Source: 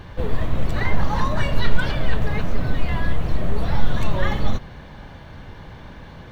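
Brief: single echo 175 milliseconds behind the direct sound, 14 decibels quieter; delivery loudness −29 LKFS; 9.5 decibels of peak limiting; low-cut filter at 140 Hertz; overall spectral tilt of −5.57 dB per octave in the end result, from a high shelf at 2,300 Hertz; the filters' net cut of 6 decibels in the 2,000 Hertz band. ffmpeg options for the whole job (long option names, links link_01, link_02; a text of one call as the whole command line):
ffmpeg -i in.wav -af "highpass=140,equalizer=frequency=2000:width_type=o:gain=-6,highshelf=frequency=2300:gain=-3.5,alimiter=limit=-24dB:level=0:latency=1,aecho=1:1:175:0.2,volume=4dB" out.wav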